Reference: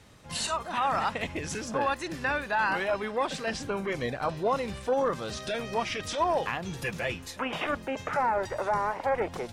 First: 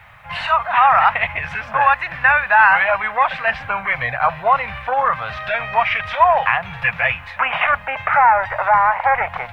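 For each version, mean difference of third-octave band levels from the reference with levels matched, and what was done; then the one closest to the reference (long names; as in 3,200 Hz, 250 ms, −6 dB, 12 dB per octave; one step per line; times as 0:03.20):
11.0 dB: drawn EQ curve 130 Hz 0 dB, 340 Hz −25 dB, 710 Hz +7 dB, 2,300 Hz +11 dB, 6,800 Hz −27 dB
bit-depth reduction 12 bits, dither none
level +7 dB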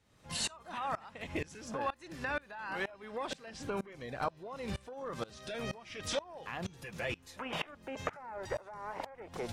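6.0 dB: downward compressor, threshold −34 dBFS, peak gain reduction 11.5 dB
tremolo with a ramp in dB swelling 2.1 Hz, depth 24 dB
level +5 dB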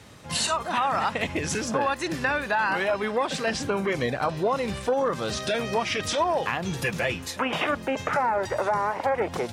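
2.0 dB: high-pass filter 69 Hz
downward compressor 3 to 1, threshold −29 dBFS, peak gain reduction 6 dB
level +7 dB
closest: third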